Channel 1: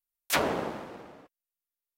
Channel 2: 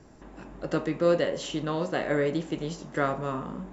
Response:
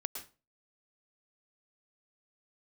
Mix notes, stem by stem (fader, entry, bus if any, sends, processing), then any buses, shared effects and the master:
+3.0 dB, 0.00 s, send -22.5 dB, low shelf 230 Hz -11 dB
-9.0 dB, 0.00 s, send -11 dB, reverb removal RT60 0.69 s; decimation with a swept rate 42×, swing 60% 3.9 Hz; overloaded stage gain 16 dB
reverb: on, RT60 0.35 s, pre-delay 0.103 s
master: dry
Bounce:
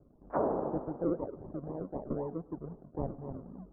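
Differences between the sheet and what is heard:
stem 2: missing overloaded stage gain 16 dB; master: extra Bessel low-pass 640 Hz, order 8

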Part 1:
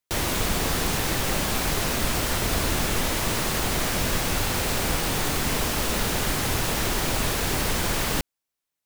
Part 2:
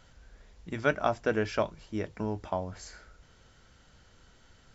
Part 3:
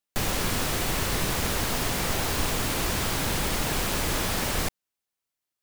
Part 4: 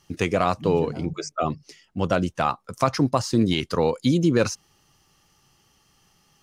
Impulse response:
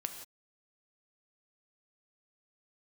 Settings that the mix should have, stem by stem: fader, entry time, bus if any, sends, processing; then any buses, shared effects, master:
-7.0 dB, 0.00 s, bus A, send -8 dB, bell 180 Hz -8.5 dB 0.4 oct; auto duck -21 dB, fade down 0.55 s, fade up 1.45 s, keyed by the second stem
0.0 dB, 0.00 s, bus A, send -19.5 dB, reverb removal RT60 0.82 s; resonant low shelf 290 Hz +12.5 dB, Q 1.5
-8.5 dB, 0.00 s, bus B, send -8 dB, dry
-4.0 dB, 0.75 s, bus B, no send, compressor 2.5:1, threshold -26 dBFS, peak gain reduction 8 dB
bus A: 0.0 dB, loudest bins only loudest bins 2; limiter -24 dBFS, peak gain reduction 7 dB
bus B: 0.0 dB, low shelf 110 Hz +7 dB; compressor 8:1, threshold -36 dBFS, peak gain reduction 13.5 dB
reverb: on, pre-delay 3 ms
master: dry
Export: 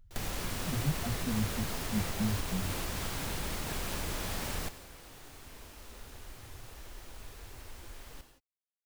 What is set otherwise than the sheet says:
stem 1 -7.0 dB -> -18.0 dB; stem 2 0.0 dB -> -6.5 dB; stem 4: muted

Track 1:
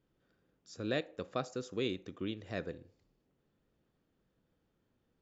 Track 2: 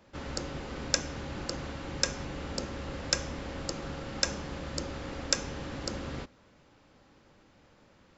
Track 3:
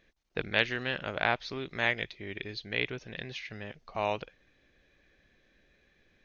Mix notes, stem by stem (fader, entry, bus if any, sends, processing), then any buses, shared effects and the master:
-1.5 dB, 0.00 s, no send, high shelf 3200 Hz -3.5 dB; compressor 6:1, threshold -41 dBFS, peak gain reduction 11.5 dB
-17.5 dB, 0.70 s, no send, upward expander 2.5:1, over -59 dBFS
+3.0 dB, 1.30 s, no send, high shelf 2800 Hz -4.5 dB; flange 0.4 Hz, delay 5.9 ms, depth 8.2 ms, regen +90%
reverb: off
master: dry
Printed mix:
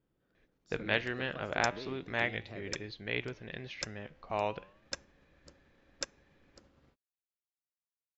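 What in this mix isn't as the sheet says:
stem 2 -17.5 dB -> -7.5 dB; stem 3: entry 1.30 s -> 0.35 s; master: extra high shelf 4100 Hz -5 dB

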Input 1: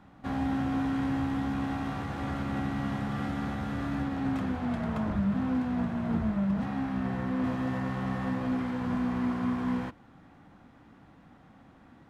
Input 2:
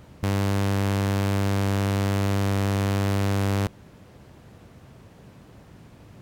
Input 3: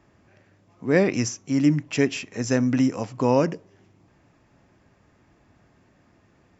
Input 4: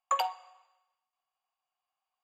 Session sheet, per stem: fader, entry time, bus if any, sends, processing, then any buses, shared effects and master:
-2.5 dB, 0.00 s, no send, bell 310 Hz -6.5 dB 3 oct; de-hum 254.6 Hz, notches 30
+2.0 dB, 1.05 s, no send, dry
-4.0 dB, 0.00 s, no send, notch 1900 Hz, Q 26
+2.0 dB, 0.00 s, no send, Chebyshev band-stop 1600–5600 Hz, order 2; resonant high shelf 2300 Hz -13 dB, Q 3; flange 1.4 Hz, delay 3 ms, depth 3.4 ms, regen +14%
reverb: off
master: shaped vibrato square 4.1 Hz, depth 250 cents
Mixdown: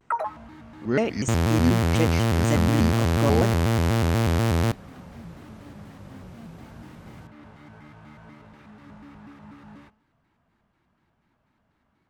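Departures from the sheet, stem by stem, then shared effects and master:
stem 1 -2.5 dB -> -10.5 dB; stem 4: missing Chebyshev band-stop 1600–5600 Hz, order 2

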